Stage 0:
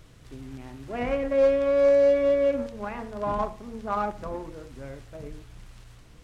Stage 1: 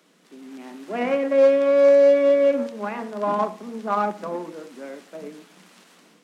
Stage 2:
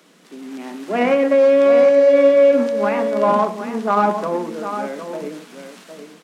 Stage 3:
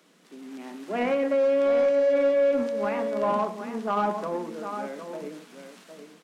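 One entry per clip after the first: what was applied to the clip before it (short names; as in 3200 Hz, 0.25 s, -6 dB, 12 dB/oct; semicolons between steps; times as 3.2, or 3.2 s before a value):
steep high-pass 170 Hz 96 dB/oct; AGC gain up to 7 dB; gain -2 dB
limiter -14.5 dBFS, peak gain reduction 7 dB; echo 0.757 s -9 dB; gain +7.5 dB
soft clip -7 dBFS, distortion -21 dB; gain -8 dB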